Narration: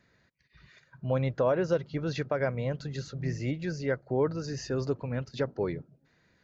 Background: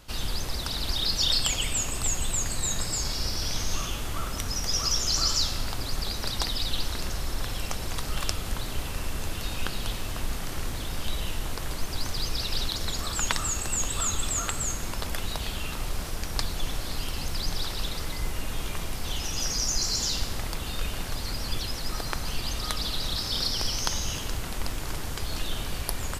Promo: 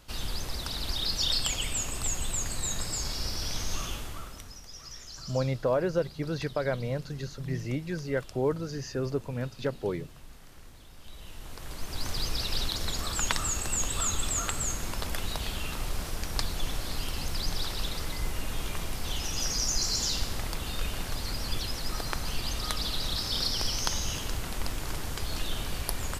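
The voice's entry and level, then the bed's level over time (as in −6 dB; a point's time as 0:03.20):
4.25 s, −0.5 dB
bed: 0:03.93 −3.5 dB
0:04.68 −19 dB
0:10.96 −19 dB
0:12.11 −1.5 dB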